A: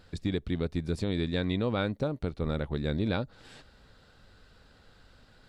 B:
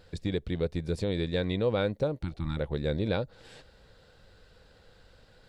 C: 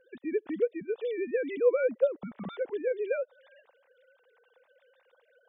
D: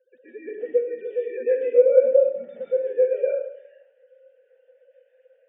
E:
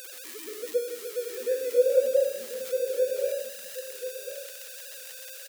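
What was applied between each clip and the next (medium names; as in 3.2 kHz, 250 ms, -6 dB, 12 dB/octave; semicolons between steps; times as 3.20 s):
spectral replace 2.25–2.55 s, 350–790 Hz before; graphic EQ with 31 bands 250 Hz -6 dB, 500 Hz +7 dB, 1.25 kHz -4 dB
formants replaced by sine waves
vowel filter e; reverberation RT60 0.70 s, pre-delay 115 ms, DRR -9.5 dB
zero-crossing glitches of -20 dBFS; on a send: delay 1040 ms -10 dB; on the sum: trim -6.5 dB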